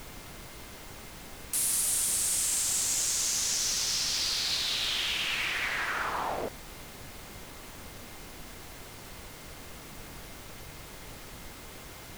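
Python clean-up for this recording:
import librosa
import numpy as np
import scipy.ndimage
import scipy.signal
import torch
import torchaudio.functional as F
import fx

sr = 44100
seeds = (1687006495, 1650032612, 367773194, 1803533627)

y = fx.fix_declip(x, sr, threshold_db=-20.5)
y = fx.notch(y, sr, hz=2100.0, q=30.0)
y = fx.noise_reduce(y, sr, print_start_s=11.53, print_end_s=12.03, reduce_db=30.0)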